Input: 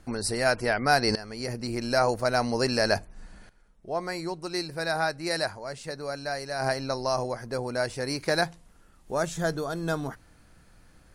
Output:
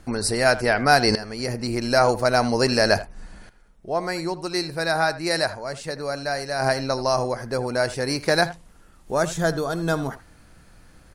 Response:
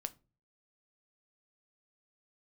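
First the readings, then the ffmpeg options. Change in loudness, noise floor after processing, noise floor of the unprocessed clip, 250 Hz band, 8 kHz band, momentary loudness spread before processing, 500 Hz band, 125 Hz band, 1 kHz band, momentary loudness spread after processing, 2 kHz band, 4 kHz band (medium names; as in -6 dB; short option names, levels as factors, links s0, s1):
+5.5 dB, -52 dBFS, -57 dBFS, +5.5 dB, +5.5 dB, 9 LU, +5.5 dB, +5.5 dB, +5.5 dB, 9 LU, +5.5 dB, +5.5 dB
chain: -filter_complex "[0:a]asplit=2[s0][s1];[s1]adelay=80,highpass=300,lowpass=3400,asoftclip=type=hard:threshold=0.178,volume=0.178[s2];[s0][s2]amix=inputs=2:normalize=0,volume=1.88"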